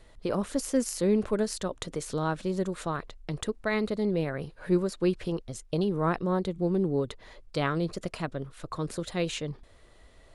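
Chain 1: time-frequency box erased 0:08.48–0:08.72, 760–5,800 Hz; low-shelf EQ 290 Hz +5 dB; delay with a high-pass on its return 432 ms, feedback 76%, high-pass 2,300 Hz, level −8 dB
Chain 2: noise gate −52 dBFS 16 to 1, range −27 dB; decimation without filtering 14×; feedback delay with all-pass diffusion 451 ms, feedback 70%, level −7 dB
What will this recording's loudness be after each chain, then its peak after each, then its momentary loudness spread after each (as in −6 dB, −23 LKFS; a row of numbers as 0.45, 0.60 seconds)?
−28.0, −29.0 LKFS; −11.0, −12.5 dBFS; 11, 7 LU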